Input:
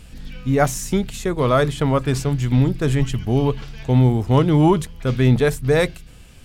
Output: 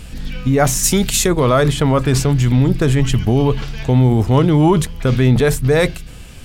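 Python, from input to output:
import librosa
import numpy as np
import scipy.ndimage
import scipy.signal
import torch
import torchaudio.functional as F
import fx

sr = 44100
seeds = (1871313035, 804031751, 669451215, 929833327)

p1 = fx.high_shelf(x, sr, hz=2800.0, db=11.5, at=(0.83, 1.26), fade=0.02)
p2 = fx.over_compress(p1, sr, threshold_db=-21.0, ratio=-0.5)
p3 = p1 + (p2 * librosa.db_to_amplitude(-2.5))
y = p3 * librosa.db_to_amplitude(1.5)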